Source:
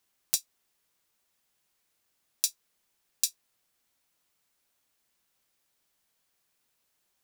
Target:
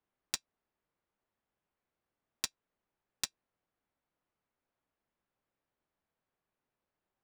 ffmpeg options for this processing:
-af "adynamicsmooth=sensitivity=2:basefreq=1.6k,volume=-2dB"

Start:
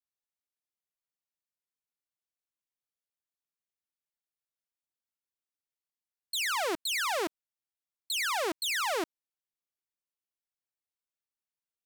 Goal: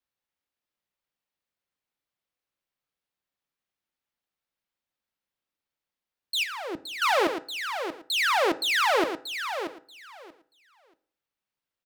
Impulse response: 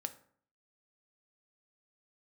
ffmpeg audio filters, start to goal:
-filter_complex "[0:a]aecho=1:1:633|1266|1899:0.376|0.0639|0.0109,asettb=1/sr,asplit=3[a][b][c];[a]atrim=end=6.434[d];[b]atrim=start=6.43:end=7.02,asetpts=PTS-STARTPTS,afade=t=in:d=0.004:c=qsin,afade=t=out:st=0.586:d=0.004:c=qsin,acrossover=split=270[e][f];[f]acompressor=threshold=-47dB:ratio=2.5[g];[e][g]amix=inputs=2:normalize=0[h];[c]atrim=start=7.016[i];[d][h]acrossfade=d=0.004:c1=hsin:c2=qsin[j];[j][i]acrossfade=d=0.004:c1=qsin:c2=hsin,asplit=2[k][l];[1:a]atrim=start_sample=2205,lowpass=4.8k[m];[l][m]afir=irnorm=-1:irlink=0,volume=5.5dB[n];[k][n]amix=inputs=2:normalize=0"

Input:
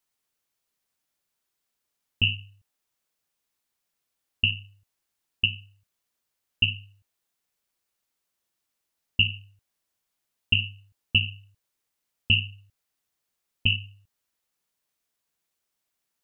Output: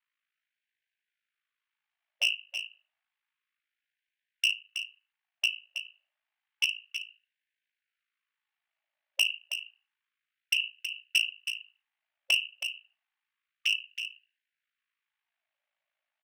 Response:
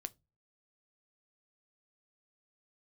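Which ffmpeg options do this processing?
-filter_complex "[0:a]lowshelf=f=200:g=11.5,bandreject=f=1k:w=6.6,acrossover=split=250[a][b];[a]acompressor=threshold=-27dB:ratio=6[c];[c][b]amix=inputs=2:normalize=0,aeval=exprs='val(0)*sin(2*PI*27*n/s)':c=same,highpass=110,equalizer=f=150:t=q:w=4:g=9,equalizer=f=300:t=q:w=4:g=10,equalizer=f=760:t=q:w=4:g=-5,equalizer=f=1.3k:t=q:w=4:g=-6,lowpass=f=2.8k:w=0.5412,lowpass=f=2.8k:w=1.3066,asettb=1/sr,asplit=3[d][e][f];[d]atrim=end=4.564[g];[e]atrim=start=4.56:end=5.46,asetpts=PTS-STARTPTS,afade=t=in:d=0.004:c=qsin,afade=t=out:st=0.896:d=0.004:c=qsin,tremolo=f=22:d=0.333[h];[f]atrim=start=5.456[i];[g][h]acrossfade=d=0.004:c1=hsin:c2=qsin[j];[j][i]acrossfade=d=0.004:c1=qsin:c2=hsin,volume=23.5dB,asoftclip=hard,volume=-23.5dB,aecho=1:1:322:0.355,asplit=2[k][l];[1:a]atrim=start_sample=2205[m];[l][m]afir=irnorm=-1:irlink=0,volume=4dB[n];[k][n]amix=inputs=2:normalize=0,afftfilt=real='re*gte(b*sr/1024,520*pow(1500/520,0.5+0.5*sin(2*PI*0.3*pts/sr)))':imag='im*gte(b*sr/1024,520*pow(1500/520,0.5+0.5*sin(2*PI*0.3*pts/sr)))':win_size=1024:overlap=0.75"

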